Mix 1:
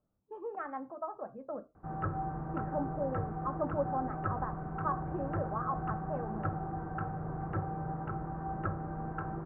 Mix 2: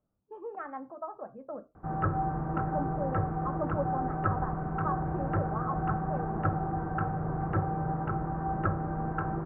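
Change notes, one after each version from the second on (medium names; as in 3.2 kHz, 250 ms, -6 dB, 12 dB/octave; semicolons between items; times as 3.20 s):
background +6.0 dB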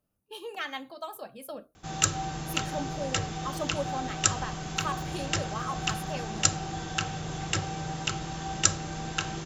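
background -3.5 dB; master: remove steep low-pass 1.4 kHz 36 dB/octave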